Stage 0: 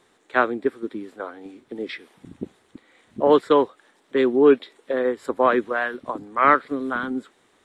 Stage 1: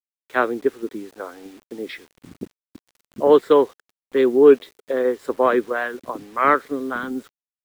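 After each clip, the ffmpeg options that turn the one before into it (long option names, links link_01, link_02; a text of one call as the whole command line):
ffmpeg -i in.wav -af "acrusher=bits=7:mix=0:aa=0.000001,adynamicequalizer=threshold=0.0398:dfrequency=430:dqfactor=2.1:tfrequency=430:tqfactor=2.1:attack=5:release=100:ratio=0.375:range=2.5:mode=boostabove:tftype=bell,volume=-1dB" out.wav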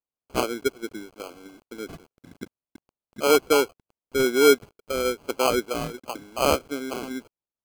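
ffmpeg -i in.wav -af "acrusher=samples=24:mix=1:aa=0.000001,volume=-5dB" out.wav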